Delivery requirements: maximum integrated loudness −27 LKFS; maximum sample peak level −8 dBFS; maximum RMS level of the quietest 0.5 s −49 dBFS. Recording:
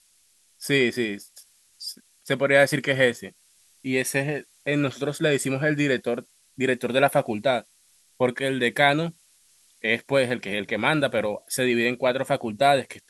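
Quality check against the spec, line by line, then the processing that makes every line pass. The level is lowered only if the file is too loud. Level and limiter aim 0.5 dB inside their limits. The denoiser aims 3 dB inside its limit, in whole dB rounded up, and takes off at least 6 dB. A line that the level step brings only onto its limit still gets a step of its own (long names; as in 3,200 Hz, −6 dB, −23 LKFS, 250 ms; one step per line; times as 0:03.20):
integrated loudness −23.5 LKFS: out of spec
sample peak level −5.5 dBFS: out of spec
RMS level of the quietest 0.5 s −62 dBFS: in spec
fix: level −4 dB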